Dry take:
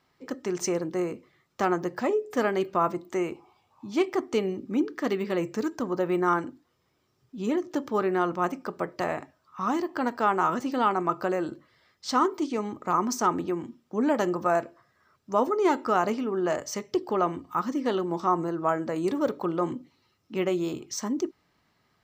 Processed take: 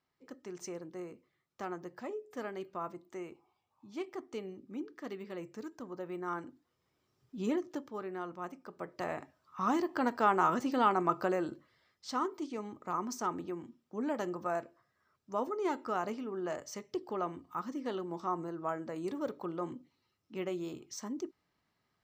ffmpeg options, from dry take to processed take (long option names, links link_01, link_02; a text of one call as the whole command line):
ffmpeg -i in.wav -af "volume=7.5dB,afade=type=in:start_time=6.23:duration=1.17:silence=0.281838,afade=type=out:start_time=7.4:duration=0.5:silence=0.281838,afade=type=in:start_time=8.67:duration=0.94:silence=0.266073,afade=type=out:start_time=11.16:duration=0.93:silence=0.446684" out.wav